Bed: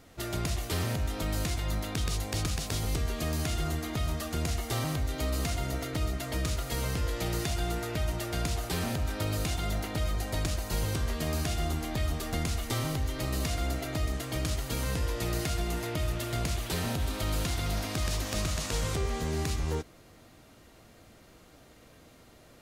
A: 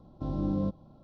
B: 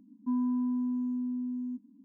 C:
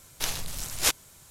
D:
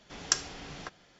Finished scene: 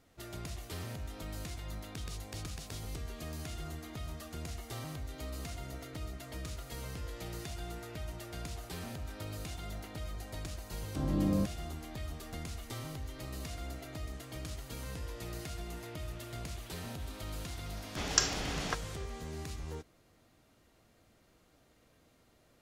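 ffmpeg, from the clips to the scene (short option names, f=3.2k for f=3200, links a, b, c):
-filter_complex "[0:a]volume=-11dB[a];[1:a]dynaudnorm=f=100:g=3:m=14dB[b];[4:a]alimiter=level_in=13dB:limit=-1dB:release=50:level=0:latency=1[c];[b]atrim=end=1.03,asetpts=PTS-STARTPTS,volume=-14.5dB,afade=t=in:d=0.004:c=hsin,afade=t=out:st=1.026:d=0.004:c=hsin,adelay=10750[d];[c]atrim=end=1.19,asetpts=PTS-STARTPTS,volume=-6.5dB,afade=t=in:d=0.004:c=hsin,afade=t=out:st=1.186:d=0.004:c=hsin,adelay=17860[e];[a][d][e]amix=inputs=3:normalize=0"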